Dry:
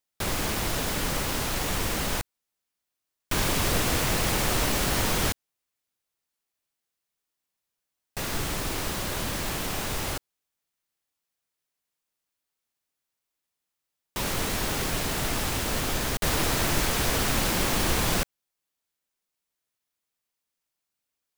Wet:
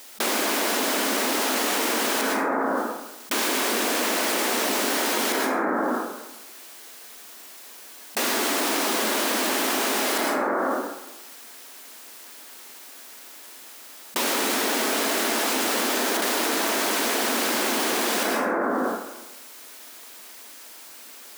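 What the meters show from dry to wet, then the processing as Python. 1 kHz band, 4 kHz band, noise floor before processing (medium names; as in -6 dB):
+7.0 dB, +4.0 dB, -85 dBFS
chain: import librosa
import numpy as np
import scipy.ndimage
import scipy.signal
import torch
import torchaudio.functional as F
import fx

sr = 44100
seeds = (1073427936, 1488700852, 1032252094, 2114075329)

y = fx.brickwall_highpass(x, sr, low_hz=210.0)
y = fx.rev_plate(y, sr, seeds[0], rt60_s=0.99, hf_ratio=0.3, predelay_ms=100, drr_db=2.5)
y = fx.env_flatten(y, sr, amount_pct=100)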